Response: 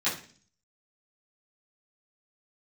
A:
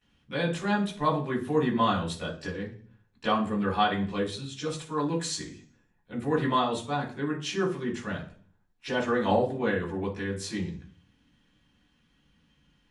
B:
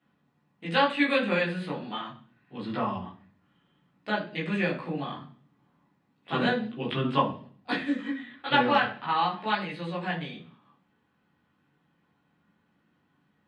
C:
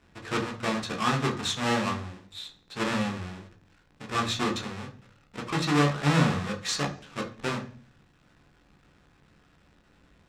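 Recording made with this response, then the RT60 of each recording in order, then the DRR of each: A; 0.45 s, 0.45 s, 0.45 s; -13.5 dB, -5.0 dB, 2.0 dB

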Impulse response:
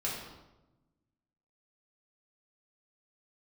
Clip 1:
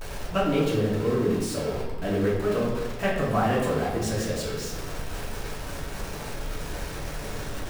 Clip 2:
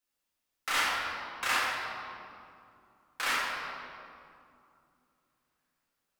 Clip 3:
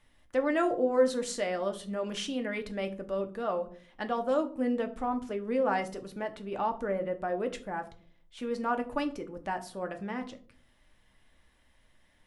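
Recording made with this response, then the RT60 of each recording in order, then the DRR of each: 1; 1.0 s, 2.6 s, 0.50 s; -6.5 dB, -7.5 dB, 5.5 dB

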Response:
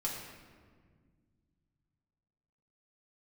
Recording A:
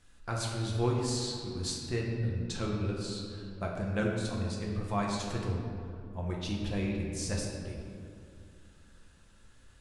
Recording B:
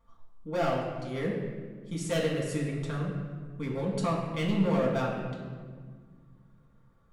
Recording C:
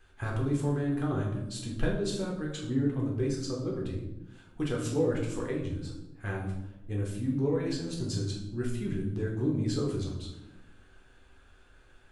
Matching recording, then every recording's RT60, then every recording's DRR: B; 2.4 s, 1.7 s, 0.95 s; -2.5 dB, -4.0 dB, -2.0 dB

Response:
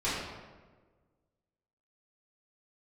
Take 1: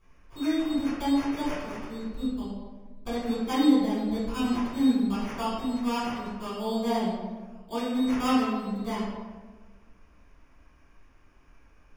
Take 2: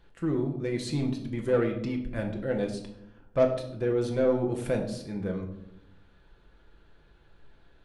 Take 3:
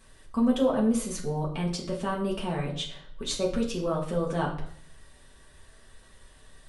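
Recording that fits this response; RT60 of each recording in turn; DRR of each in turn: 1; 1.4 s, 0.90 s, 0.60 s; -12.0 dB, 1.5 dB, -3.5 dB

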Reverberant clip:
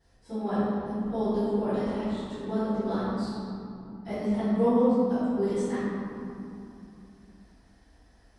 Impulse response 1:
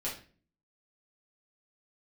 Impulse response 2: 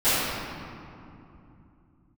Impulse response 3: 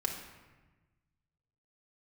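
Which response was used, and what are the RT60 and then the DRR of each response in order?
2; 0.40 s, 2.8 s, 1.2 s; -7.0 dB, -21.5 dB, -0.5 dB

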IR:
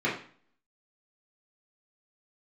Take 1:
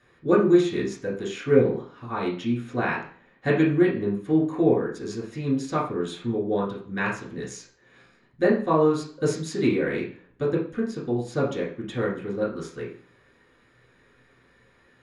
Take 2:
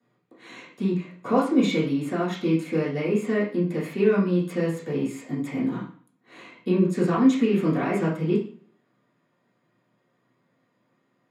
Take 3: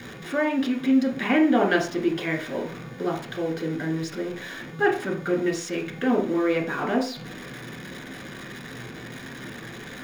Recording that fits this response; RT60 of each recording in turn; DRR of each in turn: 1; 0.45 s, 0.45 s, 0.45 s; -7.5 dB, -13.5 dB, -0.5 dB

